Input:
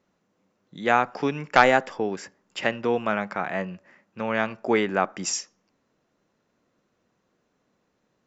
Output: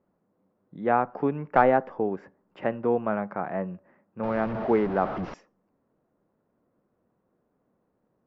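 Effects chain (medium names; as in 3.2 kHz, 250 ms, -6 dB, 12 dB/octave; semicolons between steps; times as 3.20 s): 4.23–5.34 s: one-bit delta coder 32 kbps, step -23 dBFS; low-pass 1 kHz 12 dB/octave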